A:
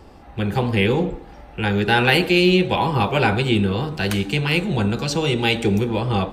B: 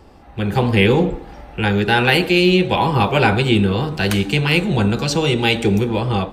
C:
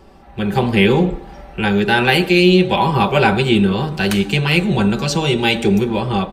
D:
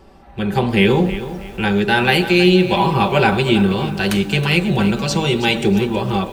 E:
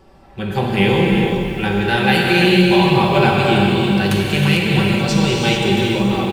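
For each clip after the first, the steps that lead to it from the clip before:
automatic gain control; level −1 dB
comb filter 5.2 ms, depth 46%
feedback echo at a low word length 321 ms, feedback 35%, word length 6 bits, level −12.5 dB; level −1 dB
single-tap delay 450 ms −11 dB; reverb whose tail is shaped and stops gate 460 ms flat, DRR −1.5 dB; level −3 dB

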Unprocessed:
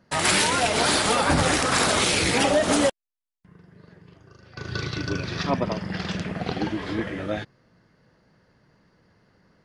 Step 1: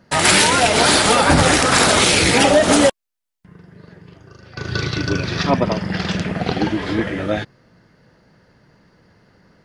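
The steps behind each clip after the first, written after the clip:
notch filter 1,100 Hz, Q 22
level +7.5 dB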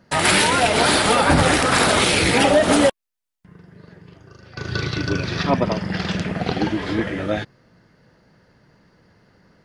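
dynamic equaliser 6,500 Hz, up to −6 dB, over −33 dBFS, Q 1.3
level −2 dB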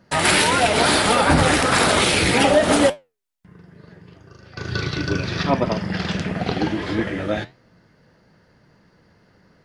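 flanger 1.7 Hz, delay 9 ms, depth 5.3 ms, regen −74%
level +4 dB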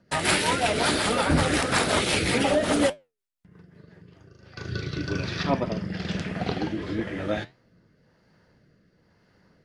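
rotating-speaker cabinet horn 5.5 Hz, later 1 Hz, at 0:03.81
level −4 dB

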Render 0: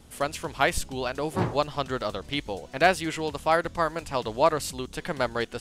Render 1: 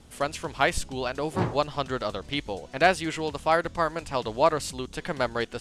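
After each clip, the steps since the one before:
low-pass filter 10,000 Hz 12 dB per octave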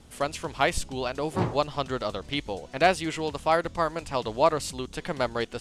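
dynamic equaliser 1,600 Hz, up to −4 dB, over −42 dBFS, Q 3.6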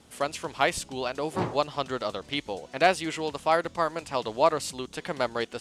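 high-pass filter 200 Hz 6 dB per octave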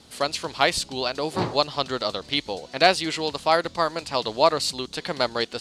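parametric band 4,300 Hz +11 dB 0.54 octaves
level +3 dB

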